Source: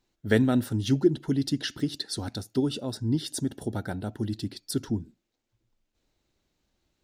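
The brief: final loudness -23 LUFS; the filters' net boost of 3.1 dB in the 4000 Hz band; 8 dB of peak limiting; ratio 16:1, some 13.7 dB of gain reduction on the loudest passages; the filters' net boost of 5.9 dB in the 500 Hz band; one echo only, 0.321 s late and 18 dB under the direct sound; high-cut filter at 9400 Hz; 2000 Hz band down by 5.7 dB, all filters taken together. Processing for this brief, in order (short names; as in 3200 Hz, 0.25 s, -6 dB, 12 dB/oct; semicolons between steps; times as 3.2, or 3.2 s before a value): LPF 9400 Hz; bell 500 Hz +8.5 dB; bell 2000 Hz -9 dB; bell 4000 Hz +6 dB; compressor 16:1, threshold -25 dBFS; limiter -21.5 dBFS; echo 0.321 s -18 dB; gain +10.5 dB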